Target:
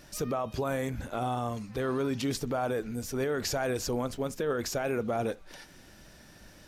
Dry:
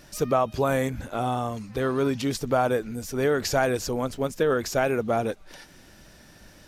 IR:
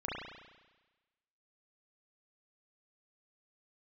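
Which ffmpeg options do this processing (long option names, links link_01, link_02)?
-filter_complex "[0:a]alimiter=limit=-20dB:level=0:latency=1:release=28,asplit=2[link_01][link_02];[1:a]atrim=start_sample=2205,atrim=end_sample=3969[link_03];[link_02][link_03]afir=irnorm=-1:irlink=0,volume=-20dB[link_04];[link_01][link_04]amix=inputs=2:normalize=0,volume=-3dB"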